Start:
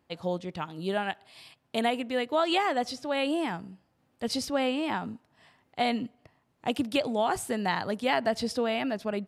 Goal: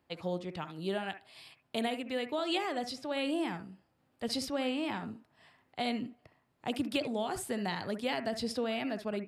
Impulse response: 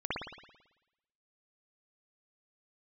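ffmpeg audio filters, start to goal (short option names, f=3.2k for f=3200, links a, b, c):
-filter_complex "[0:a]acrossover=split=460|3000[a][b][c];[b]acompressor=threshold=-36dB:ratio=3[d];[a][d][c]amix=inputs=3:normalize=0,asplit=2[e][f];[f]highpass=f=260:w=0.5412,highpass=f=260:w=1.3066,equalizer=f=470:t=q:w=4:g=-7,equalizer=f=860:t=q:w=4:g=-9,equalizer=f=5.6k:t=q:w=4:g=9,lowpass=f=6.8k:w=0.5412,lowpass=f=6.8k:w=1.3066[g];[1:a]atrim=start_sample=2205,atrim=end_sample=3087,asetrate=40572,aresample=44100[h];[g][h]afir=irnorm=-1:irlink=0,volume=-12dB[i];[e][i]amix=inputs=2:normalize=0,volume=-3.5dB"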